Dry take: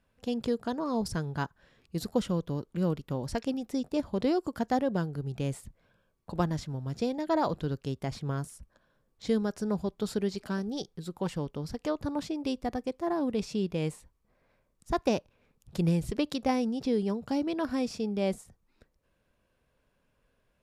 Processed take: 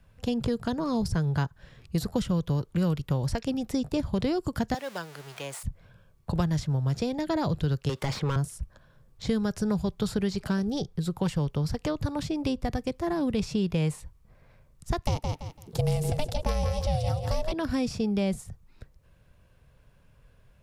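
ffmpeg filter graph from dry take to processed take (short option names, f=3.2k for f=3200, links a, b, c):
-filter_complex "[0:a]asettb=1/sr,asplit=3[a][b][c];[a]atrim=end=4.744[d];[b]atrim=start=4.74:end=5.63,asetpts=PTS-STARTPTS,afade=t=in:d=0.004:c=qsin,afade=t=out:st=0.886:d=0.004:c=qsin,aeval=exprs='val(0)+0.5*0.00841*sgn(val(0))':c=same,highpass=830[e];[c]atrim=start=5.626[f];[d][e]acrossfade=d=0.004:c1=hsin:c2=qsin[g];[g][f]acrossfade=d=0.004:c1=qsin:c2=hsin,asettb=1/sr,asplit=3[h][i][j];[h]atrim=end=7.894[k];[i]atrim=start=7.89:end=8.36,asetpts=PTS-STARTPTS,afade=t=in:d=0.004:c=qsin,afade=t=out:st=0.466:d=0.004:c=qsin,highpass=f=390:p=1,asplit=2[l][m];[m]highpass=f=720:p=1,volume=24dB,asoftclip=type=tanh:threshold=-22.5dB[n];[l][n]amix=inputs=2:normalize=0,lowpass=f=3.9k:p=1,volume=-6dB,bandreject=f=690:w=5.7[o];[j]atrim=start=8.356[p];[k][o]acrossfade=d=0.004:c1=hsin:c2=qsin[q];[q][p]acrossfade=d=0.004:c1=qsin:c2=hsin,asettb=1/sr,asplit=3[r][s][t];[r]atrim=end=15.054[u];[s]atrim=start=15.05:end=17.52,asetpts=PTS-STARTPTS,afade=t=in:d=0.004:c=qsin,afade=t=out:st=2.466:d=0.004:c=qsin,aemphasis=mode=production:type=cd,aeval=exprs='val(0)*sin(2*PI*310*n/s)':c=same,aecho=1:1:168|336|504:0.398|0.0836|0.0176,atrim=end_sample=108927[v];[t]atrim=start=17.516[w];[u][v]acrossfade=d=0.004:c1=hsin:c2=qsin[x];[x][w]acrossfade=d=0.004:c1=qsin:c2=hsin,lowshelf=f=180:t=q:w=1.5:g=8.5,acrossover=split=300|770|1600[y][z][aa][ab];[y]acompressor=threshold=-35dB:ratio=4[ac];[z]acompressor=threshold=-42dB:ratio=4[ad];[aa]acompressor=threshold=-51dB:ratio=4[ae];[ab]acompressor=threshold=-47dB:ratio=4[af];[ac][ad][ae][af]amix=inputs=4:normalize=0,volume=8dB"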